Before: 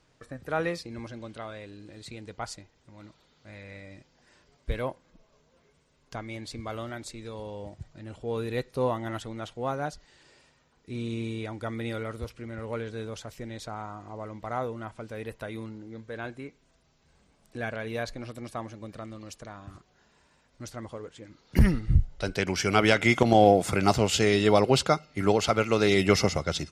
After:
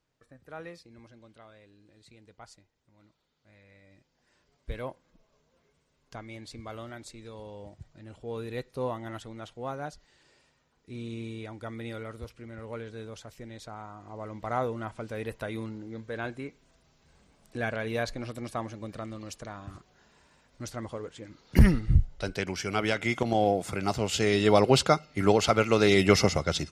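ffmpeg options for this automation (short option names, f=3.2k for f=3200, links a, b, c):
-af "volume=9.5dB,afade=t=in:st=3.79:d=1.09:silence=0.375837,afade=t=in:st=13.95:d=0.58:silence=0.446684,afade=t=out:st=21.62:d=1.02:silence=0.375837,afade=t=in:st=23.93:d=0.76:silence=0.421697"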